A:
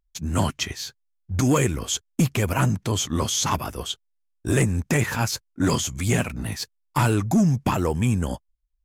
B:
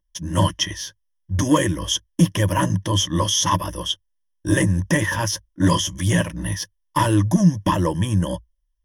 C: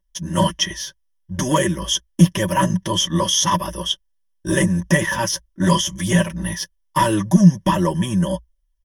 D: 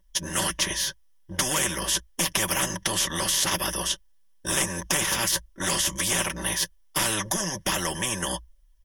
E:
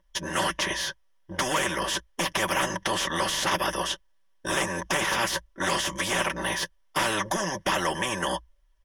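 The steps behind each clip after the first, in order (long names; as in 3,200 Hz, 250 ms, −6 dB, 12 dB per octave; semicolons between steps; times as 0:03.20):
EQ curve with evenly spaced ripples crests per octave 1.2, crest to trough 16 dB
comb filter 5.2 ms, depth 75%
every bin compressed towards the loudest bin 4 to 1; level −5 dB
mid-hump overdrive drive 14 dB, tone 1,200 Hz, clips at −6 dBFS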